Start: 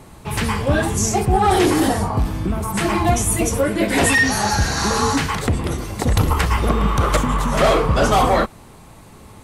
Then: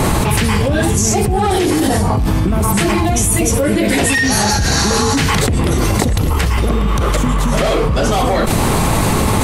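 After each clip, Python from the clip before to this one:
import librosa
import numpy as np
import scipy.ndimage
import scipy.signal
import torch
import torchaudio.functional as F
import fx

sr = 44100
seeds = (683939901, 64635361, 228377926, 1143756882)

y = fx.dynamic_eq(x, sr, hz=1100.0, q=1.0, threshold_db=-31.0, ratio=4.0, max_db=-6)
y = fx.env_flatten(y, sr, amount_pct=100)
y = y * 10.0 ** (-1.0 / 20.0)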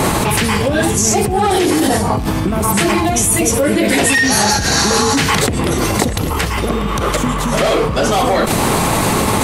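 y = fx.low_shelf(x, sr, hz=110.0, db=-12.0)
y = fx.dmg_crackle(y, sr, seeds[0], per_s=32.0, level_db=-31.0)
y = y * 10.0 ** (2.0 / 20.0)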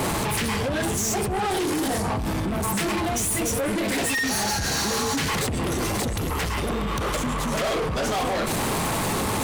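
y = 10.0 ** (-19.0 / 20.0) * np.tanh(x / 10.0 ** (-19.0 / 20.0))
y = y * 10.0 ** (-3.5 / 20.0)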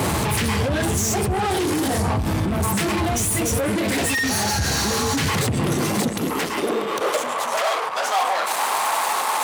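y = fx.filter_sweep_highpass(x, sr, from_hz=77.0, to_hz=860.0, start_s=5.13, end_s=7.71, q=2.0)
y = y * 10.0 ** (2.5 / 20.0)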